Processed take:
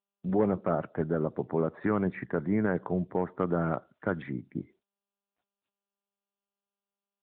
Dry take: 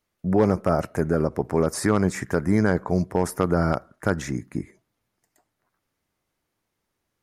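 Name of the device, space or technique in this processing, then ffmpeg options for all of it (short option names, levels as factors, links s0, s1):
mobile call with aggressive noise cancelling: -af "highpass=110,afftdn=nr=31:nf=-44,volume=0.501" -ar 8000 -c:a libopencore_amrnb -b:a 10200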